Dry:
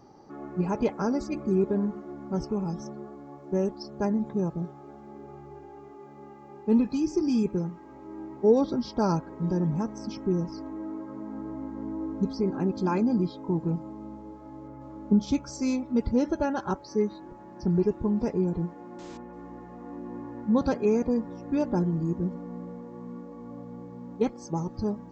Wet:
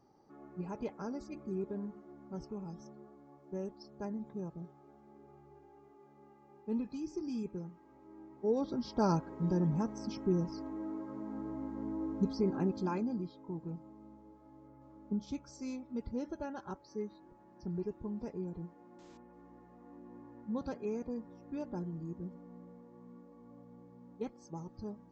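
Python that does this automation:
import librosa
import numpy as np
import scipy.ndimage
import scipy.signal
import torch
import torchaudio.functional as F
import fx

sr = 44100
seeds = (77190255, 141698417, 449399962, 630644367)

y = fx.gain(x, sr, db=fx.line((8.35, -13.5), (9.04, -4.5), (12.59, -4.5), (13.28, -14.0)))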